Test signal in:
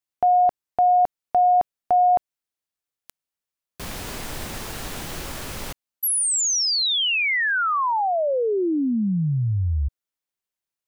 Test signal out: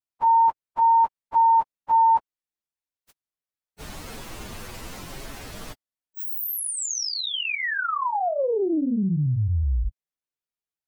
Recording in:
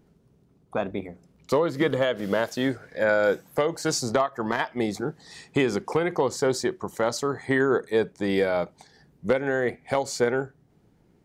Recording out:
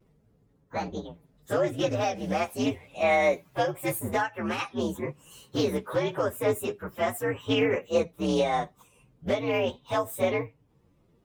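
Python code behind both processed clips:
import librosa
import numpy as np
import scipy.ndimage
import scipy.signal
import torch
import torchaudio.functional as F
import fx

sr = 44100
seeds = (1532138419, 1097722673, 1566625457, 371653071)

y = fx.partial_stretch(x, sr, pct=122)
y = fx.vibrato(y, sr, rate_hz=0.31, depth_cents=10.0)
y = fx.doppler_dist(y, sr, depth_ms=0.13)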